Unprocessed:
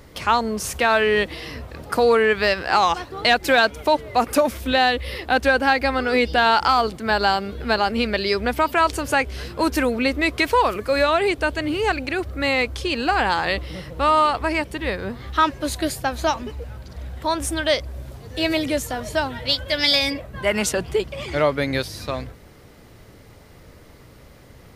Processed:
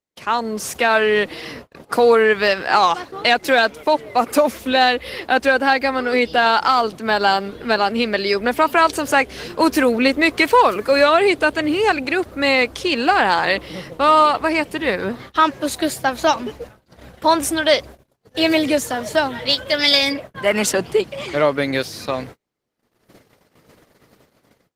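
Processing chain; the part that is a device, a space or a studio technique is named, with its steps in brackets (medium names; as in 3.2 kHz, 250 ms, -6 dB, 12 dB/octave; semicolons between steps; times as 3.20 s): video call (high-pass 170 Hz 12 dB/octave; level rider gain up to 14.5 dB; gate -32 dBFS, range -40 dB; trim -1.5 dB; Opus 16 kbps 48 kHz)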